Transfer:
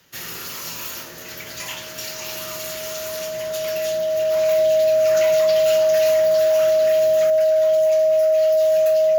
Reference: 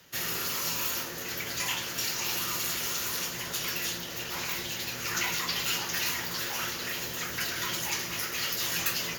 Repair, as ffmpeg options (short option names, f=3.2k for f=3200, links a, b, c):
-af "bandreject=f=630:w=30,asetnsamples=n=441:p=0,asendcmd='7.3 volume volume 7.5dB',volume=0dB"